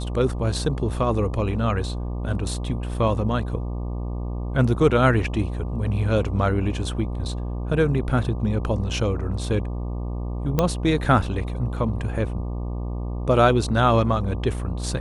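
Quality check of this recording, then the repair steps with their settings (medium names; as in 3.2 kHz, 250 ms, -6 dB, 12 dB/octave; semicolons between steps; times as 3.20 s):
buzz 60 Hz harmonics 20 -28 dBFS
10.59 s: pop -7 dBFS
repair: de-click; de-hum 60 Hz, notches 20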